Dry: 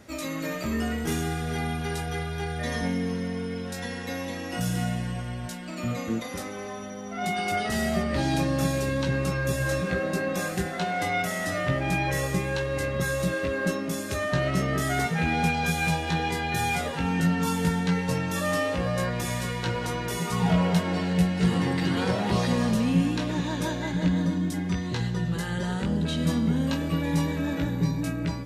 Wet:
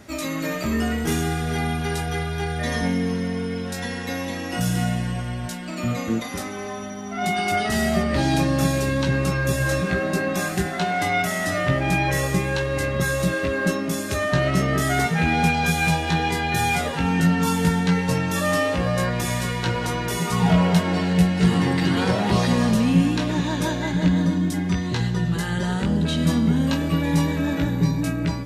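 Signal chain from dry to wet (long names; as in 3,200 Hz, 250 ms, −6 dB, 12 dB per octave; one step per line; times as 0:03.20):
notch filter 510 Hz, Q 12
level +5 dB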